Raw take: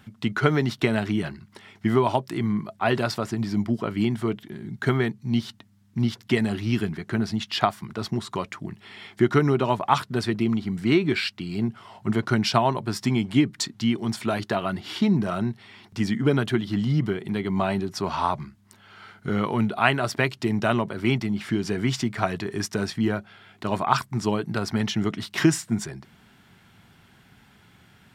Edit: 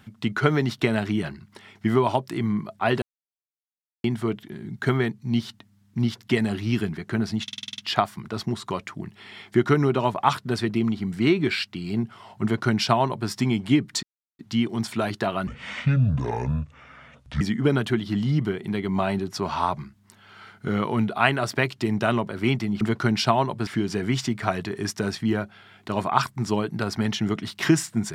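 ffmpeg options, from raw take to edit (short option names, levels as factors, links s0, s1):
-filter_complex "[0:a]asplit=15[s0][s1][s2][s3][s4][s5][s6][s7][s8][s9][s10][s11][s12][s13][s14];[s0]atrim=end=3.02,asetpts=PTS-STARTPTS,afade=t=out:st=3.016:d=0.004:c=hsin[s15];[s1]atrim=start=3.02:end=4.04,asetpts=PTS-STARTPTS,volume=0[s16];[s2]atrim=start=4.04:end=7.482,asetpts=PTS-STARTPTS,afade=t=in:d=0.004:c=hsin[s17];[s3]atrim=start=7.428:end=7.482[s18];[s4]atrim=start=7.428:end=7.482[s19];[s5]atrim=start=7.428:end=7.482[s20];[s6]atrim=start=7.428:end=7.482[s21];[s7]atrim=start=7.428:end=7.482[s22];[s8]atrim=start=7.428:end=7.482[s23];[s9]atrim=start=7.428:end=13.68,asetpts=PTS-STARTPTS,afade=t=out:st=6.248:d=0.004:c=hsin,apad=pad_dur=0.36[s24];[s10]atrim=start=13.68:end=14.764,asetpts=PTS-STARTPTS,afade=t=in:d=0.004:c=hsin[s25];[s11]atrim=start=14.76:end=16.02,asetpts=PTS-STARTPTS,asetrate=28665,aresample=44100,atrim=end_sample=85486,asetpts=PTS-STARTPTS[s26];[s12]atrim=start=16.016:end=21.422[s27];[s13]atrim=start=12.078:end=12.942[s28];[s14]atrim=start=21.418[s29];[s15][s16][s17]concat=n=3:v=0:a=1[s30];[s30][s18]acrossfade=d=0.004:c1=hsin:c2=hsin[s31];[s31][s19]acrossfade=d=0.004:c1=hsin:c2=hsin[s32];[s32][s20]acrossfade=d=0.004:c1=hsin:c2=hsin[s33];[s33][s21]acrossfade=d=0.004:c1=hsin:c2=hsin[s34];[s34][s22]acrossfade=d=0.004:c1=hsin:c2=hsin[s35];[s35][s23]acrossfade=d=0.004:c1=hsin:c2=hsin[s36];[s24][s25]concat=n=2:v=0:a=1[s37];[s36][s37]acrossfade=d=0.004:c1=hsin:c2=hsin[s38];[s38][s26]acrossfade=d=0.004:c1=hsin:c2=hsin[s39];[s39][s27]acrossfade=d=0.004:c1=hsin:c2=hsin[s40];[s40][s28]acrossfade=d=0.004:c1=hsin:c2=hsin[s41];[s41][s29]acrossfade=d=0.004:c1=hsin:c2=hsin"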